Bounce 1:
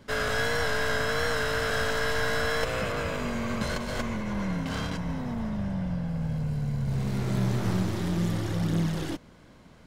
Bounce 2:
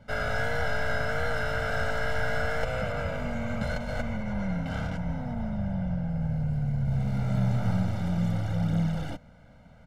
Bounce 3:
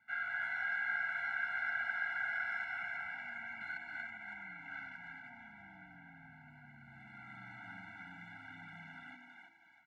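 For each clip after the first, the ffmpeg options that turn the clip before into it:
-af "highshelf=f=2.9k:g=-11.5,aecho=1:1:1.4:0.9,volume=-2.5dB"
-filter_complex "[0:a]bandpass=f=1.8k:t=q:w=3.7:csg=0,asplit=6[a][b][c][d][e][f];[b]adelay=325,afreqshift=85,volume=-4dB[g];[c]adelay=650,afreqshift=170,volume=-11.7dB[h];[d]adelay=975,afreqshift=255,volume=-19.5dB[i];[e]adelay=1300,afreqshift=340,volume=-27.2dB[j];[f]adelay=1625,afreqshift=425,volume=-35dB[k];[a][g][h][i][j][k]amix=inputs=6:normalize=0,afftfilt=real='re*eq(mod(floor(b*sr/1024/330),2),0)':imag='im*eq(mod(floor(b*sr/1024/330),2),0)':win_size=1024:overlap=0.75"

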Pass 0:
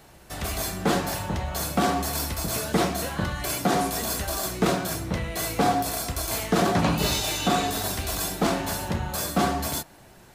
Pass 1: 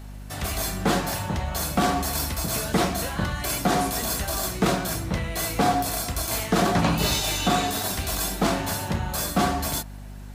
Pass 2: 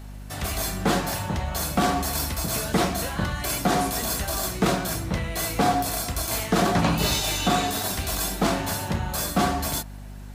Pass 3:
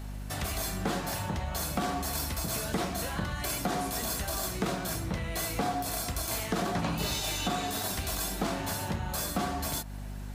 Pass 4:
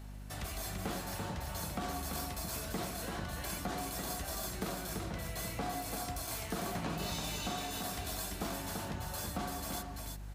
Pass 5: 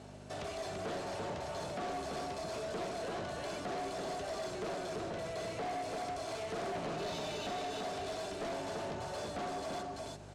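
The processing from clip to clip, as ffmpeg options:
-af "equalizer=f=420:t=o:w=1.1:g=-2.5,aeval=exprs='val(0)+0.0112*(sin(2*PI*50*n/s)+sin(2*PI*2*50*n/s)/2+sin(2*PI*3*50*n/s)/3+sin(2*PI*4*50*n/s)/4+sin(2*PI*5*50*n/s)/5)':c=same,volume=1.5dB"
-af anull
-af "acompressor=threshold=-32dB:ratio=2.5"
-af "aecho=1:1:338:0.596,volume=-8dB"
-filter_complex "[0:a]highpass=130,equalizer=f=190:t=q:w=4:g=-4,equalizer=f=410:t=q:w=4:g=10,equalizer=f=630:t=q:w=4:g=10,equalizer=f=1.9k:t=q:w=4:g=-4,lowpass=f=8.3k:w=0.5412,lowpass=f=8.3k:w=1.3066,acrossover=split=4700[a][b];[b]acompressor=threshold=-55dB:ratio=4:attack=1:release=60[c];[a][c]amix=inputs=2:normalize=0,asoftclip=type=tanh:threshold=-37.5dB,volume=2.5dB"

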